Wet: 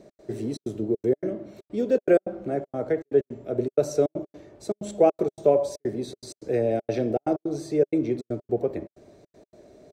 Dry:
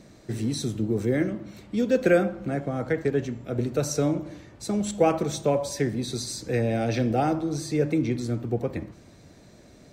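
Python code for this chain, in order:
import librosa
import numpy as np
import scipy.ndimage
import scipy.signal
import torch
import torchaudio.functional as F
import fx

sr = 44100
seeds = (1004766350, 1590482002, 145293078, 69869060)

y = fx.step_gate(x, sr, bpm=159, pattern='x.xxxx.xxx.', floor_db=-60.0, edge_ms=4.5)
y = fx.small_body(y, sr, hz=(410.0, 600.0), ring_ms=25, db=15)
y = y * librosa.db_to_amplitude(-8.0)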